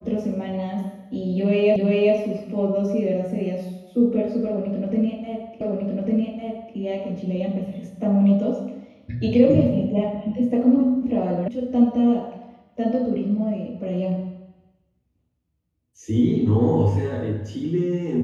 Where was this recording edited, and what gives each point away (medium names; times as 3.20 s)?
1.76 s: repeat of the last 0.39 s
5.61 s: repeat of the last 1.15 s
11.48 s: sound stops dead